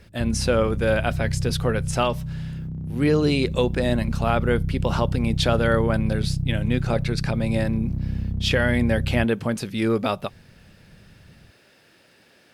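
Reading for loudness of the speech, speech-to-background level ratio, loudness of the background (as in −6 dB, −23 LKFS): −24.0 LKFS, 4.0 dB, −28.0 LKFS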